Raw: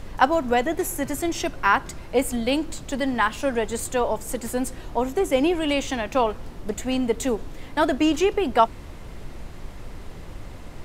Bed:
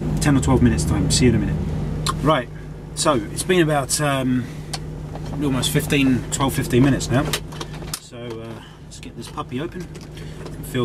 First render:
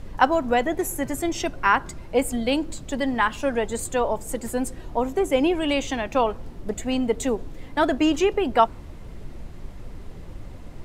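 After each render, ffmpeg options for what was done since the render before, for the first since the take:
-af "afftdn=nr=6:nf=-40"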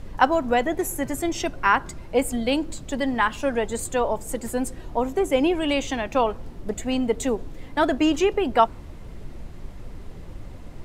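-af anull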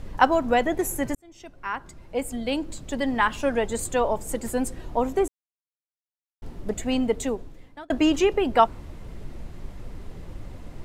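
-filter_complex "[0:a]asplit=5[a][b][c][d][e];[a]atrim=end=1.15,asetpts=PTS-STARTPTS,afade=t=out:st=1.146:d=0.004:c=hsin[f];[b]atrim=start=1.15:end=5.28,asetpts=PTS-STARTPTS,afade=t=in:d=2.15,afade=t=out:st=4.126:d=0.004:c=hsin[g];[c]atrim=start=5.28:end=6.42,asetpts=PTS-STARTPTS,volume=0[h];[d]atrim=start=6.42:end=7.9,asetpts=PTS-STARTPTS,afade=t=in:d=0.004:c=hsin,afade=t=out:st=0.61:d=0.87[i];[e]atrim=start=7.9,asetpts=PTS-STARTPTS,afade=t=in:d=0.004:c=hsin[j];[f][g][h][i][j]concat=n=5:v=0:a=1"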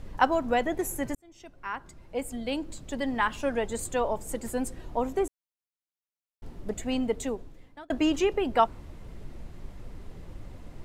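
-af "volume=-4.5dB"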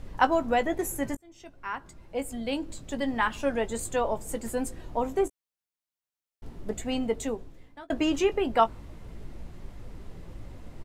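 -filter_complex "[0:a]asplit=2[a][b];[b]adelay=18,volume=-10.5dB[c];[a][c]amix=inputs=2:normalize=0"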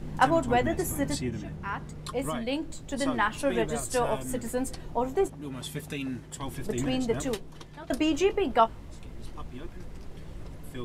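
-filter_complex "[1:a]volume=-17dB[a];[0:a][a]amix=inputs=2:normalize=0"

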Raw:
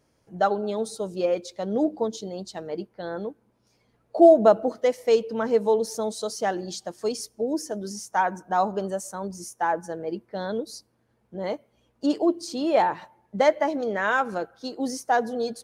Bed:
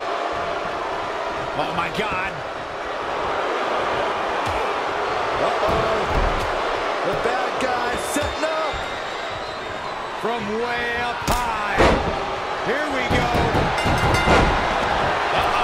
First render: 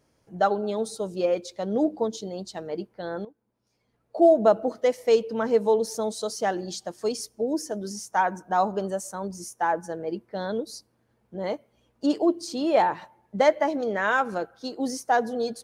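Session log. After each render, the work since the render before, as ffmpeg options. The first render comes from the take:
-filter_complex "[0:a]asplit=2[a][b];[a]atrim=end=3.25,asetpts=PTS-STARTPTS,afade=t=out:st=3.246:d=0.004:c=hsin:silence=0.16788[c];[b]atrim=start=3.25,asetpts=PTS-STARTPTS,afade=t=in:d=1.68:silence=0.16788[d];[c][d]concat=n=2:v=0:a=1"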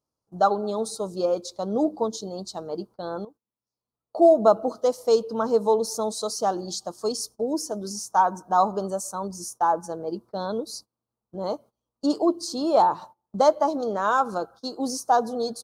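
-af "agate=range=-20dB:threshold=-46dB:ratio=16:detection=peak,firequalizer=gain_entry='entry(520,0);entry(1200,7);entry(1900,-19);entry(4100,4)':delay=0.05:min_phase=1"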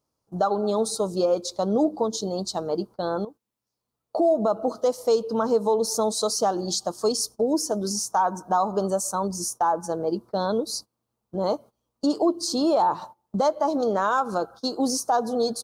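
-filter_complex "[0:a]asplit=2[a][b];[b]acompressor=threshold=-30dB:ratio=6,volume=1dB[c];[a][c]amix=inputs=2:normalize=0,alimiter=limit=-13dB:level=0:latency=1:release=116"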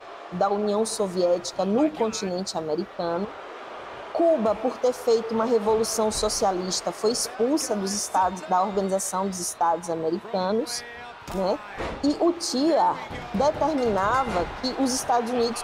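-filter_complex "[1:a]volume=-16dB[a];[0:a][a]amix=inputs=2:normalize=0"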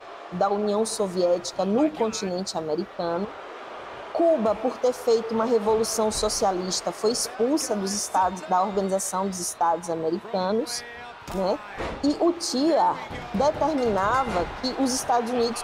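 -af anull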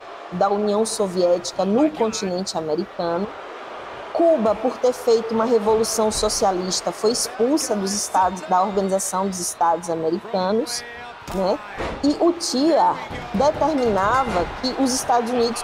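-af "volume=4dB"

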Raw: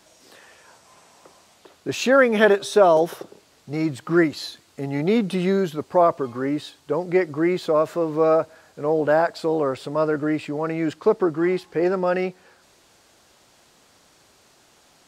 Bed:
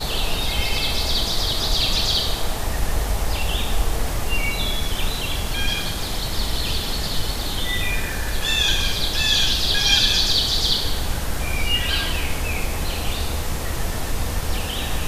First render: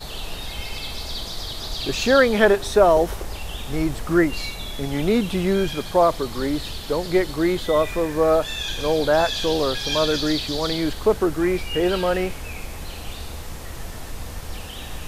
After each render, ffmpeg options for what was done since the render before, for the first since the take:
-filter_complex "[1:a]volume=-9dB[a];[0:a][a]amix=inputs=2:normalize=0"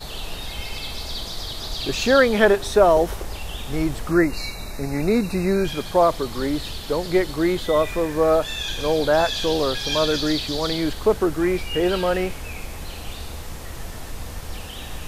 -filter_complex "[0:a]asettb=1/sr,asplit=3[a][b][c];[a]atrim=end=4.114[d];[b]atrim=start=4.11:end=5.65,asetpts=PTS-STARTPTS,afade=t=in:d=0.004:c=qsin,afade=t=out:st=1.536:d=0.004:c=qsin,asuperstop=centerf=3200:order=12:qfactor=3.1[e];[c]atrim=start=5.646[f];[d][e]acrossfade=d=0.004:c1=hsin:c2=qsin[g];[g][f]acrossfade=d=0.004:c1=qsin:c2=hsin"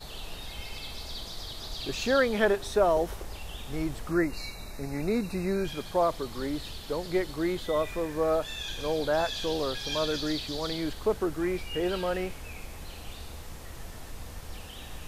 -af "volume=-8.5dB"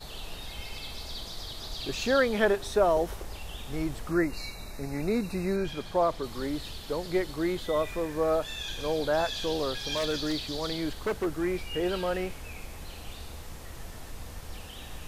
-filter_complex "[0:a]asettb=1/sr,asplit=3[a][b][c];[a]atrim=end=5.564[d];[b]atrim=start=5.56:end=6.24,asetpts=PTS-STARTPTS,afade=t=in:d=0.004:c=qsin,afade=t=out:st=0.676:d=0.004:c=qsin,highshelf=f=7.7k:g=-8.5[e];[c]atrim=start=6.236[f];[d][e]acrossfade=d=0.004:c1=hsin:c2=qsin[g];[g][f]acrossfade=d=0.004:c1=qsin:c2=hsin,asettb=1/sr,asplit=3[h][i][j];[h]atrim=end=9.884[k];[i]atrim=start=9.88:end=11.28,asetpts=PTS-STARTPTS,afade=t=in:d=0.004:c=qsin,afade=t=out:st=1.396:d=0.004:c=qsin,aeval=exprs='0.0794*(abs(mod(val(0)/0.0794+3,4)-2)-1)':c=same[l];[j]atrim=start=11.276[m];[k][l]acrossfade=d=0.004:c1=hsin:c2=qsin[n];[n][m]acrossfade=d=0.004:c1=qsin:c2=hsin"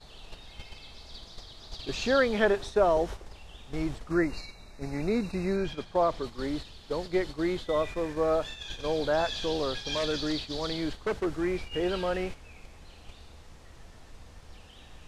-af "lowpass=7k,agate=range=-8dB:threshold=-35dB:ratio=16:detection=peak"

